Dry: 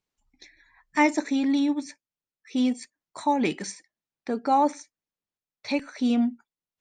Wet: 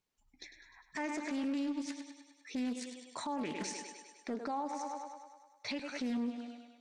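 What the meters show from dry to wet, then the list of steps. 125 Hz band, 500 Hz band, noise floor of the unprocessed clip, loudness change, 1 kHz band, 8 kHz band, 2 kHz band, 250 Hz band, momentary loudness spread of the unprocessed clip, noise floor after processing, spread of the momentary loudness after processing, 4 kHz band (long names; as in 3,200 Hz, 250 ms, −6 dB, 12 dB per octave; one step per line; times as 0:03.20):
−11.0 dB, −12.5 dB, below −85 dBFS, −13.5 dB, −14.5 dB, −6.0 dB, −12.0 dB, −12.0 dB, 19 LU, −71 dBFS, 17 LU, −8.0 dB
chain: feedback echo with a high-pass in the loop 101 ms, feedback 64%, high-pass 230 Hz, level −11.5 dB
downward compressor 3 to 1, threshold −31 dBFS, peak gain reduction 12 dB
brickwall limiter −28.5 dBFS, peak gain reduction 10.5 dB
highs frequency-modulated by the lows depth 0.3 ms
level −1 dB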